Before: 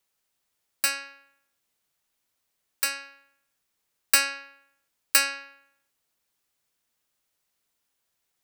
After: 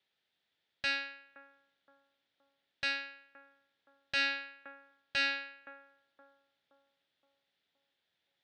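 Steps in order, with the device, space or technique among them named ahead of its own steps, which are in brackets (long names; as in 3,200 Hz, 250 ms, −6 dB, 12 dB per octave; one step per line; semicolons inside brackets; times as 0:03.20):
analogue delay pedal into a guitar amplifier (bucket-brigade delay 520 ms, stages 4,096, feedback 44%, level −17 dB; tube saturation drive 28 dB, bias 0.5; loudspeaker in its box 100–4,200 Hz, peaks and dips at 1,100 Hz −9 dB, 1,800 Hz +4 dB, 3,500 Hz +8 dB)
level +1 dB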